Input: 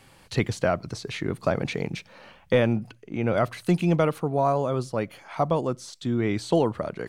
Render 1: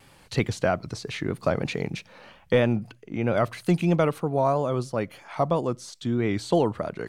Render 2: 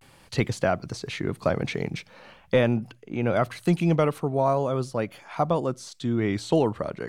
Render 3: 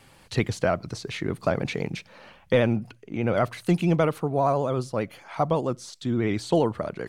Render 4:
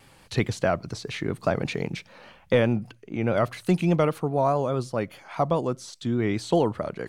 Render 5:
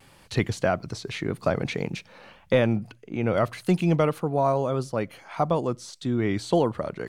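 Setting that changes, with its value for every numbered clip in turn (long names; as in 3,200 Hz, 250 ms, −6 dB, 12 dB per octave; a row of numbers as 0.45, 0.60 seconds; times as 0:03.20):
pitch vibrato, speed: 3.1, 0.42, 15, 4.9, 1.7 Hertz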